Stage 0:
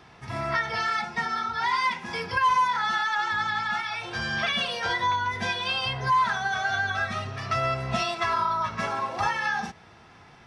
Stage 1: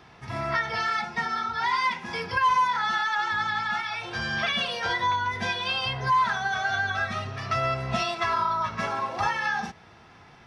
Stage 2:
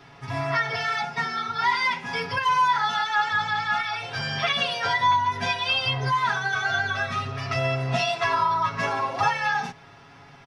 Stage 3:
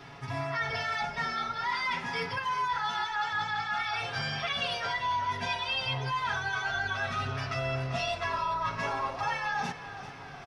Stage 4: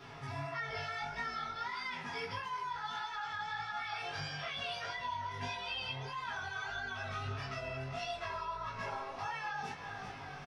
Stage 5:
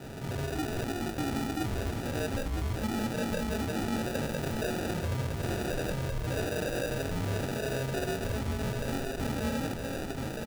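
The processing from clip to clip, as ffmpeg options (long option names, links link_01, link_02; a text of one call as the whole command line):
ffmpeg -i in.wav -af "equalizer=frequency=8500:width=1.9:gain=-4" out.wav
ffmpeg -i in.wav -af "aecho=1:1:7.2:0.95" out.wav
ffmpeg -i in.wav -filter_complex "[0:a]areverse,acompressor=threshold=-32dB:ratio=4,areverse,asplit=7[link_01][link_02][link_03][link_04][link_05][link_06][link_07];[link_02]adelay=391,afreqshift=-42,volume=-13dB[link_08];[link_03]adelay=782,afreqshift=-84,volume=-18.4dB[link_09];[link_04]adelay=1173,afreqshift=-126,volume=-23.7dB[link_10];[link_05]adelay=1564,afreqshift=-168,volume=-29.1dB[link_11];[link_06]adelay=1955,afreqshift=-210,volume=-34.4dB[link_12];[link_07]adelay=2346,afreqshift=-252,volume=-39.8dB[link_13];[link_01][link_08][link_09][link_10][link_11][link_12][link_13]amix=inputs=7:normalize=0,volume=1.5dB" out.wav
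ffmpeg -i in.wav -filter_complex "[0:a]acompressor=threshold=-35dB:ratio=6,flanger=delay=15.5:depth=7.2:speed=1.6,asplit=2[link_01][link_02];[link_02]adelay=20,volume=-3dB[link_03];[link_01][link_03]amix=inputs=2:normalize=0,volume=-1dB" out.wav
ffmpeg -i in.wav -filter_complex "[0:a]acrusher=samples=41:mix=1:aa=0.000001,volume=35.5dB,asoftclip=hard,volume=-35.5dB,asplit=2[link_01][link_02];[link_02]aecho=0:1:966:0.501[link_03];[link_01][link_03]amix=inputs=2:normalize=0,volume=8dB" out.wav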